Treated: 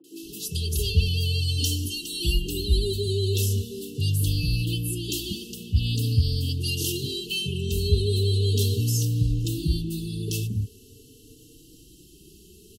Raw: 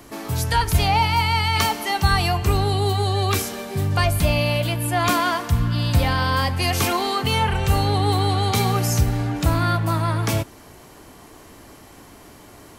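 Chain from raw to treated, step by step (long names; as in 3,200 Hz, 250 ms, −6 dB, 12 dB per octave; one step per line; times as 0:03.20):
0:01.38–0:02.83: comb filter 3.5 ms, depth 71%
linear-phase brick-wall band-stop 480–2,600 Hz
three-band delay without the direct sound mids, highs, lows 40/220 ms, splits 250/1,400 Hz
barber-pole flanger 3.5 ms +0.42 Hz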